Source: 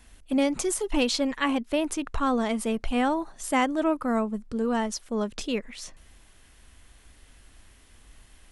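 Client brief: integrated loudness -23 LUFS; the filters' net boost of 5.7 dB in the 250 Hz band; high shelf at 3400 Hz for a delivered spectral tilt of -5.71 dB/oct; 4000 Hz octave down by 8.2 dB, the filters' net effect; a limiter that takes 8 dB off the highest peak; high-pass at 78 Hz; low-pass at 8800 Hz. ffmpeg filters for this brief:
-af "highpass=78,lowpass=8.8k,equalizer=f=250:t=o:g=6.5,highshelf=f=3.4k:g=-4.5,equalizer=f=4k:t=o:g=-8,volume=4dB,alimiter=limit=-14dB:level=0:latency=1"

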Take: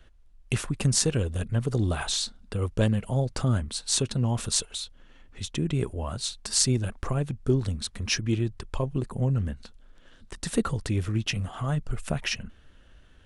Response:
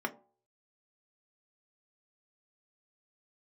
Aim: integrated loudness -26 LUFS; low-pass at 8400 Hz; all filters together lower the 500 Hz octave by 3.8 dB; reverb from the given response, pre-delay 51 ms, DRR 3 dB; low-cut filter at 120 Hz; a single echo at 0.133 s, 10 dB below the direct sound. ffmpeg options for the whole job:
-filter_complex "[0:a]highpass=120,lowpass=8.4k,equalizer=f=500:t=o:g=-5,aecho=1:1:133:0.316,asplit=2[a][b];[1:a]atrim=start_sample=2205,adelay=51[c];[b][c]afir=irnorm=-1:irlink=0,volume=-8.5dB[d];[a][d]amix=inputs=2:normalize=0,volume=2.5dB"

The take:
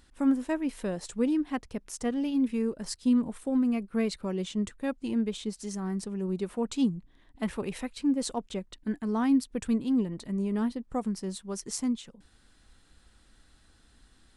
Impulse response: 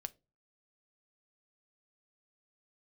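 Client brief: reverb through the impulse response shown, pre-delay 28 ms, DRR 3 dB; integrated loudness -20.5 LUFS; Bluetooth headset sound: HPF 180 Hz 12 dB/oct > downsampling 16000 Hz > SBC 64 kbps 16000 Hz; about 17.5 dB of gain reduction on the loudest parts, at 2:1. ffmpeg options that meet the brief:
-filter_complex "[0:a]acompressor=threshold=-54dB:ratio=2,asplit=2[a][b];[1:a]atrim=start_sample=2205,adelay=28[c];[b][c]afir=irnorm=-1:irlink=0,volume=0dB[d];[a][d]amix=inputs=2:normalize=0,highpass=180,aresample=16000,aresample=44100,volume=25dB" -ar 16000 -c:a sbc -b:a 64k

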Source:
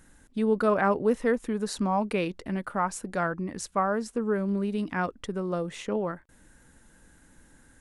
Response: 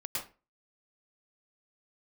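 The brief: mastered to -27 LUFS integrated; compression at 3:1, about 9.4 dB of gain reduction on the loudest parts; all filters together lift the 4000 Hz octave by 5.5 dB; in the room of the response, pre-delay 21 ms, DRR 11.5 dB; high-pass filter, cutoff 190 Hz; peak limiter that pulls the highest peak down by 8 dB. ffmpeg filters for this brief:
-filter_complex "[0:a]highpass=190,equalizer=f=4k:t=o:g=7,acompressor=threshold=-32dB:ratio=3,alimiter=level_in=2.5dB:limit=-24dB:level=0:latency=1,volume=-2.5dB,asplit=2[a][b];[1:a]atrim=start_sample=2205,adelay=21[c];[b][c]afir=irnorm=-1:irlink=0,volume=-14dB[d];[a][d]amix=inputs=2:normalize=0,volume=10dB"

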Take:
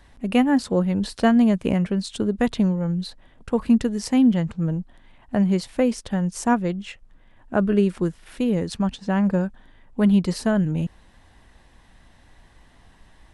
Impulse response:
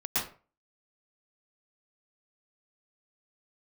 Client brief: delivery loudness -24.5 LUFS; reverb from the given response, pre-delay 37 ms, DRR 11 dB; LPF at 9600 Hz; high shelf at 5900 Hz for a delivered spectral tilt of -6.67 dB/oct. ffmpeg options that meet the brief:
-filter_complex "[0:a]lowpass=9.6k,highshelf=f=5.9k:g=3.5,asplit=2[a][b];[1:a]atrim=start_sample=2205,adelay=37[c];[b][c]afir=irnorm=-1:irlink=0,volume=-19dB[d];[a][d]amix=inputs=2:normalize=0,volume=-2.5dB"

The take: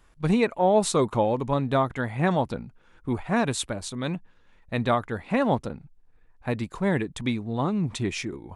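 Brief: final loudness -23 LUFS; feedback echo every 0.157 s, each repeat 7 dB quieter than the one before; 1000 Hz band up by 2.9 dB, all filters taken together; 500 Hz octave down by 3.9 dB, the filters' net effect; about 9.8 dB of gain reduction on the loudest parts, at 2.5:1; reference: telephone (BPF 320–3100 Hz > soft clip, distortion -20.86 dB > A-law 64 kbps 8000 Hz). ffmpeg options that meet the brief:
-af "equalizer=f=500:t=o:g=-6,equalizer=f=1k:t=o:g=6,acompressor=threshold=-32dB:ratio=2.5,highpass=320,lowpass=3.1k,aecho=1:1:157|314|471|628|785:0.447|0.201|0.0905|0.0407|0.0183,asoftclip=threshold=-21.5dB,volume=13.5dB" -ar 8000 -c:a pcm_alaw

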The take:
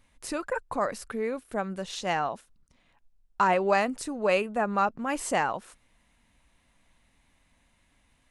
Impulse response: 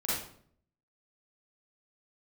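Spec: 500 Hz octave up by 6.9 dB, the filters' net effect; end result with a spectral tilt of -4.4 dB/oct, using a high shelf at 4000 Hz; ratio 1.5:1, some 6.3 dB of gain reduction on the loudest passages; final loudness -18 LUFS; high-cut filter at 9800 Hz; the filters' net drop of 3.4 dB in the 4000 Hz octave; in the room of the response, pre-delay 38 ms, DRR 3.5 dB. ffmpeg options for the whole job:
-filter_complex "[0:a]lowpass=9.8k,equalizer=f=500:t=o:g=8.5,highshelf=f=4k:g=5.5,equalizer=f=4k:t=o:g=-8.5,acompressor=threshold=-31dB:ratio=1.5,asplit=2[a][b];[1:a]atrim=start_sample=2205,adelay=38[c];[b][c]afir=irnorm=-1:irlink=0,volume=-10.5dB[d];[a][d]amix=inputs=2:normalize=0,volume=9.5dB"

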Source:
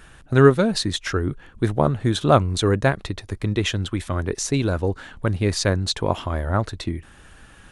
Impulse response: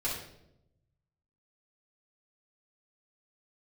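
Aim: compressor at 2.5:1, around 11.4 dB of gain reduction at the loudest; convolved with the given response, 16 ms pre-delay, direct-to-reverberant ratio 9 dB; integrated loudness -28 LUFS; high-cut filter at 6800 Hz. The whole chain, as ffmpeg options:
-filter_complex "[0:a]lowpass=6.8k,acompressor=threshold=-25dB:ratio=2.5,asplit=2[a][b];[1:a]atrim=start_sample=2205,adelay=16[c];[b][c]afir=irnorm=-1:irlink=0,volume=-14.5dB[d];[a][d]amix=inputs=2:normalize=0"

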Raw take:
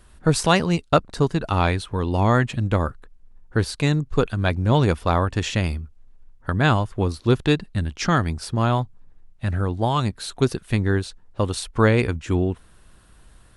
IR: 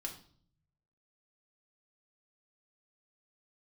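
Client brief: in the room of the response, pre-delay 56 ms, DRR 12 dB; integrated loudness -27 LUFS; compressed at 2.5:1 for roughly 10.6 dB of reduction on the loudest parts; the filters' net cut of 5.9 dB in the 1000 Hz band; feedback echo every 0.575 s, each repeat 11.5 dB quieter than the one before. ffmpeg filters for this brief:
-filter_complex "[0:a]equalizer=f=1k:t=o:g=-8,acompressor=threshold=-30dB:ratio=2.5,aecho=1:1:575|1150|1725:0.266|0.0718|0.0194,asplit=2[a][b];[1:a]atrim=start_sample=2205,adelay=56[c];[b][c]afir=irnorm=-1:irlink=0,volume=-10.5dB[d];[a][d]amix=inputs=2:normalize=0,volume=4.5dB"

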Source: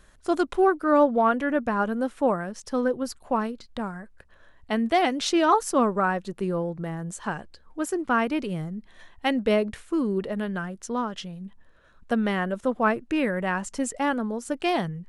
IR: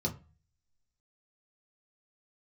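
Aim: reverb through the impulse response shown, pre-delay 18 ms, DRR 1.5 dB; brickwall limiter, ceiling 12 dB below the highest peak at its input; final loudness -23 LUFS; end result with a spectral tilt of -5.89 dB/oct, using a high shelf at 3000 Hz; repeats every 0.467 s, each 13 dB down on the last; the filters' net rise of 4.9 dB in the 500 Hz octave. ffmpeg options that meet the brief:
-filter_complex "[0:a]equalizer=f=500:t=o:g=6.5,highshelf=f=3k:g=-6,alimiter=limit=-17dB:level=0:latency=1,aecho=1:1:467|934|1401:0.224|0.0493|0.0108,asplit=2[a][b];[1:a]atrim=start_sample=2205,adelay=18[c];[b][c]afir=irnorm=-1:irlink=0,volume=-5.5dB[d];[a][d]amix=inputs=2:normalize=0,volume=-2.5dB"

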